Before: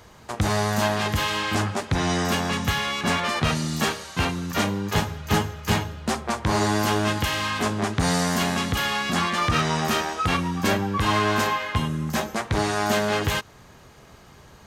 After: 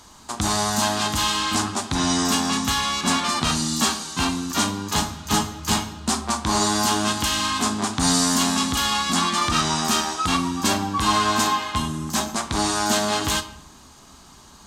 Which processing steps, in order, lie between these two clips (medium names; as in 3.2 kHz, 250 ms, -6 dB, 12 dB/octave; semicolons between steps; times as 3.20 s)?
graphic EQ 125/250/500/1000/2000/4000/8000 Hz -9/+7/-10/+6/-6/+5/+10 dB; reverberation RT60 0.65 s, pre-delay 7 ms, DRR 9 dB